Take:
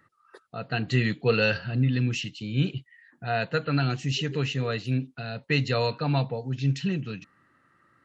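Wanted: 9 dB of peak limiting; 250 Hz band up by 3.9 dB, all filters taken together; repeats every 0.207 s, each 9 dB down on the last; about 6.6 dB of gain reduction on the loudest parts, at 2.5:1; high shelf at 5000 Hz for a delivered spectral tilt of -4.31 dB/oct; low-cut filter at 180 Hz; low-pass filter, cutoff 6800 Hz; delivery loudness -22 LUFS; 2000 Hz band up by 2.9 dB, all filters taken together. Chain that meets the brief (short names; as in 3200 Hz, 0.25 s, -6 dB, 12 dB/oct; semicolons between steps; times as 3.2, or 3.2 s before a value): HPF 180 Hz; LPF 6800 Hz; bell 250 Hz +6.5 dB; bell 2000 Hz +3 dB; high shelf 5000 Hz +5 dB; compressor 2.5:1, threshold -26 dBFS; limiter -22.5 dBFS; feedback echo 0.207 s, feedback 35%, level -9 dB; gain +10 dB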